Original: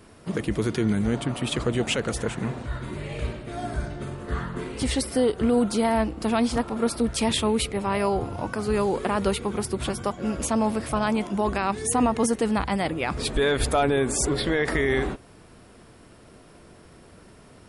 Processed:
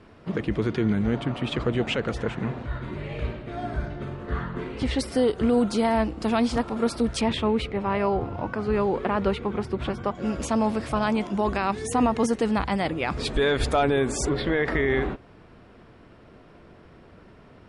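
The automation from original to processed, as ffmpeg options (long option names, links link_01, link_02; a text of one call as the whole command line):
ffmpeg -i in.wav -af "asetnsamples=nb_out_samples=441:pad=0,asendcmd='4.99 lowpass f 6900;7.21 lowpass f 2800;10.15 lowpass f 6200;14.29 lowpass f 3100',lowpass=3400" out.wav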